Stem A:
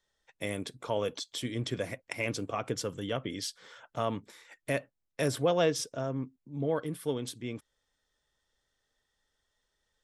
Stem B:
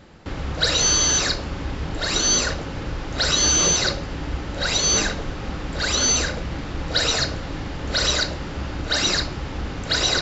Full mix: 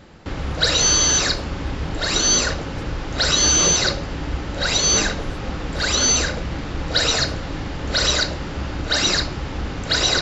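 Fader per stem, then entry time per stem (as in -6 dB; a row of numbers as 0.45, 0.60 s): -18.0, +2.0 dB; 0.00, 0.00 s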